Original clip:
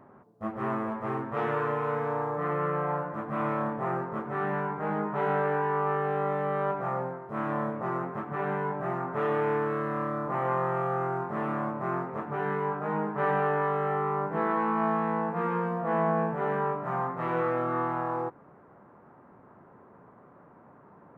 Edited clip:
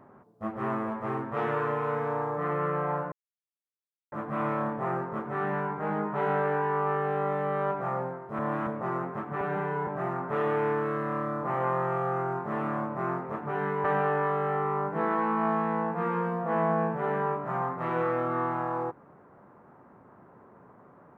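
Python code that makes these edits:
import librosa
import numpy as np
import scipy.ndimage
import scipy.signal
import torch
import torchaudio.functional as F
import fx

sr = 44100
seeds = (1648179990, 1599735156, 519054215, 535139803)

y = fx.edit(x, sr, fx.insert_silence(at_s=3.12, length_s=1.0),
    fx.reverse_span(start_s=7.39, length_s=0.28),
    fx.stretch_span(start_s=8.41, length_s=0.31, factor=1.5),
    fx.cut(start_s=12.69, length_s=0.54), tone=tone)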